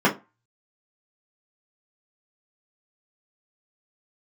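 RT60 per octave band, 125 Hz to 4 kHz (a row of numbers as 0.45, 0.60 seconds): 0.25, 0.25, 0.25, 0.30, 0.20, 0.15 seconds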